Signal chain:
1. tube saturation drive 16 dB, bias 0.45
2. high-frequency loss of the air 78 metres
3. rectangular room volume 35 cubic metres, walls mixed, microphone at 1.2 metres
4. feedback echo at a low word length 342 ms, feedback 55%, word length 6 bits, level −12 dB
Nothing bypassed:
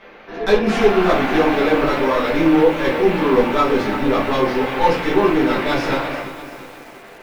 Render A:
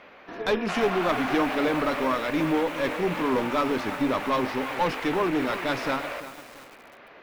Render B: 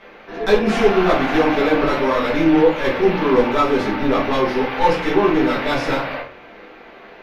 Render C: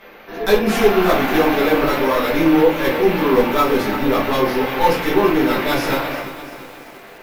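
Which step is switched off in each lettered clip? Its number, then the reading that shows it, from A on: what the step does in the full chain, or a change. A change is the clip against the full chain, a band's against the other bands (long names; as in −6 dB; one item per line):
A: 3, change in momentary loudness spread −4 LU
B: 4, change in momentary loudness spread −5 LU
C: 2, 4 kHz band +1.5 dB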